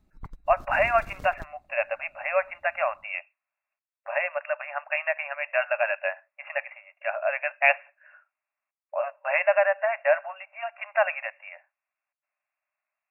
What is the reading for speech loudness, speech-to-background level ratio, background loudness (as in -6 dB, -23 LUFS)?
-27.0 LUFS, 19.5 dB, -46.5 LUFS